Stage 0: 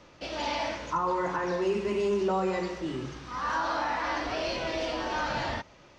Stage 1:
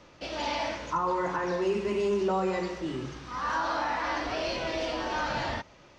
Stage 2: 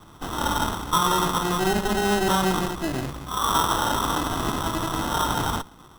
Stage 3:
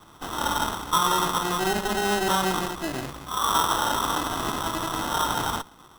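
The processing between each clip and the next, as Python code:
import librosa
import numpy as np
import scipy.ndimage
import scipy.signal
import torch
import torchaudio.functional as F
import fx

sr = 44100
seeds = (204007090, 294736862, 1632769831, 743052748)

y1 = x
y2 = fx.lower_of_two(y1, sr, delay_ms=0.88)
y2 = fx.sample_hold(y2, sr, seeds[0], rate_hz=2300.0, jitter_pct=0)
y2 = y2 * 10.0 ** (8.5 / 20.0)
y3 = fx.low_shelf(y2, sr, hz=300.0, db=-7.5)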